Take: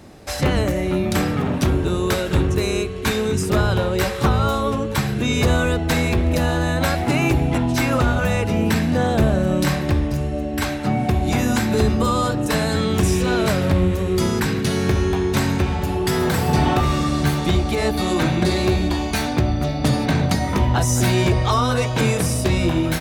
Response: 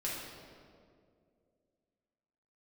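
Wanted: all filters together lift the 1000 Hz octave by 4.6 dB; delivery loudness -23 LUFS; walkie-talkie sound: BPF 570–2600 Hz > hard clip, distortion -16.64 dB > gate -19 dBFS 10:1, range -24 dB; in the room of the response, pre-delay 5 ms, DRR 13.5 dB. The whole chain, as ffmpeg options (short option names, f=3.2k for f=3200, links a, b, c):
-filter_complex "[0:a]equalizer=f=1k:t=o:g=7,asplit=2[a][b];[1:a]atrim=start_sample=2205,adelay=5[c];[b][c]afir=irnorm=-1:irlink=0,volume=-17dB[d];[a][d]amix=inputs=2:normalize=0,highpass=570,lowpass=2.6k,asoftclip=type=hard:threshold=-15.5dB,agate=range=-24dB:threshold=-19dB:ratio=10,volume=3.5dB"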